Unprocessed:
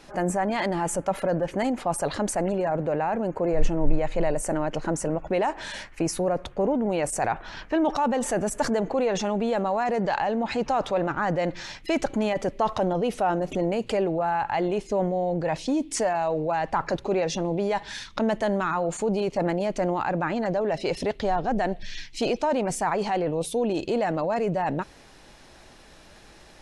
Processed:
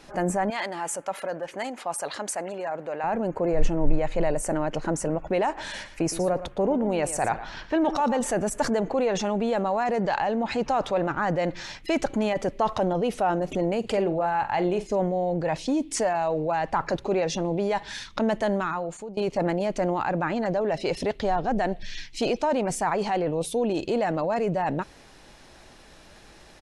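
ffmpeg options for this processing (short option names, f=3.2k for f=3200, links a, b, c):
-filter_complex "[0:a]asettb=1/sr,asplit=3[a][b][c];[a]atrim=end=0.504[d];[b]atrim=start=0.5:end=3.04,asetpts=PTS-STARTPTS,afade=t=in:d=0.004:c=qsin,afade=t=out:st=2.536:d=0.004:c=qsin,highpass=f=930:p=1[e];[c]atrim=start=3.036[f];[d][e]acrossfade=d=0.004:c1=hsin:c2=qsin[g];[g][f]acrossfade=d=0.004:c1=qsin:c2=hsin,asettb=1/sr,asplit=3[h][i][j];[h]atrim=end=5.464[k];[i]atrim=start=5.46:end=8.21,asetpts=PTS-STARTPTS,afade=t=in:d=0.004:c=qsin,afade=t=out:st=2.746:d=0.004:c=qsin,aecho=1:1:115:0.224,atrim=end_sample=121275[l];[j]atrim=start=8.206[m];[k][l]acrossfade=d=0.004:c1=hsin:c2=qsin[n];[n][m]acrossfade=d=0.004:c1=qsin:c2=hsin,asplit=3[o][p][q];[o]afade=t=out:st=13.83:d=0.02[r];[p]asplit=2[s][t];[t]adelay=45,volume=-11.5dB[u];[s][u]amix=inputs=2:normalize=0,afade=t=in:st=13.83:d=0.02,afade=t=out:st=14.95:d=0.02[v];[q]afade=t=in:st=14.95:d=0.02[w];[r][v][w]amix=inputs=3:normalize=0,asplit=2[x][y];[x]atrim=end=19.17,asetpts=PTS-STARTPTS,afade=t=out:st=18.53:d=0.64:silence=0.105925[z];[y]atrim=start=19.17,asetpts=PTS-STARTPTS,afade=t=in:d=0.004:c=hsin:silence=0.105925[aa];[z][aa]concat=n=2:v=0:a=1"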